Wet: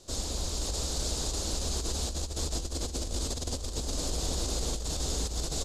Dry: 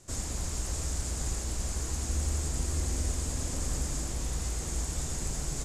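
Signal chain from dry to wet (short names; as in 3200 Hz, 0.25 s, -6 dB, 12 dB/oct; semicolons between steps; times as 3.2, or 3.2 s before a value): on a send: bouncing-ball echo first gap 0.52 s, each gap 0.8×, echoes 5; on the sum: negative-ratio compressor -30 dBFS, ratio -0.5; ten-band EQ 125 Hz -7 dB, 500 Hz +5 dB, 2000 Hz -9 dB, 4000 Hz +12 dB, 8000 Hz -5 dB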